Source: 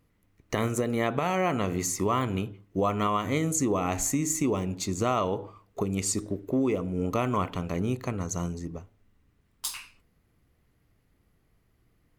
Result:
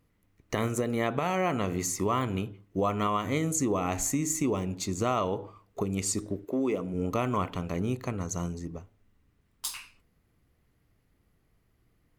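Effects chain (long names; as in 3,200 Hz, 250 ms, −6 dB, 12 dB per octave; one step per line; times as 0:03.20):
0:06.44–0:06.93: high-pass filter 300 Hz → 120 Hz 12 dB per octave
level −1.5 dB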